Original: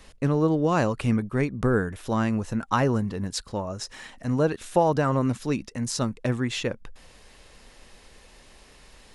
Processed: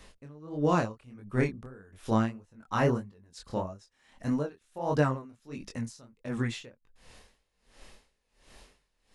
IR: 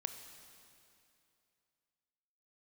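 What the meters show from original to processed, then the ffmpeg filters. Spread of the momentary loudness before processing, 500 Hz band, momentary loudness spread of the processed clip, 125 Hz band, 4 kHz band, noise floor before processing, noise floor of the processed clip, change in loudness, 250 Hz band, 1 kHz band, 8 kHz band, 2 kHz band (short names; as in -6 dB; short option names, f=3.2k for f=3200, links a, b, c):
10 LU, -7.0 dB, 20 LU, -6.5 dB, -10.5 dB, -53 dBFS, -76 dBFS, -5.5 dB, -7.0 dB, -6.0 dB, -13.5 dB, -5.5 dB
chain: -af "flanger=delay=20:depth=7.5:speed=1.6,aeval=exprs='val(0)*pow(10,-27*(0.5-0.5*cos(2*PI*1.4*n/s))/20)':c=same,volume=1.5dB"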